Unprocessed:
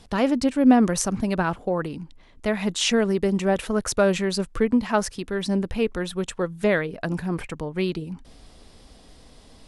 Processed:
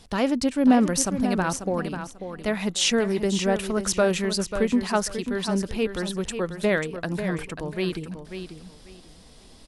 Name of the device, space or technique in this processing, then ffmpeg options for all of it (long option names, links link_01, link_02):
presence and air boost: -af "equalizer=frequency=4600:width_type=o:width=1.8:gain=2.5,highshelf=frequency=9100:gain=6.5,aecho=1:1:541|1082|1623:0.355|0.0781|0.0172,volume=-2dB"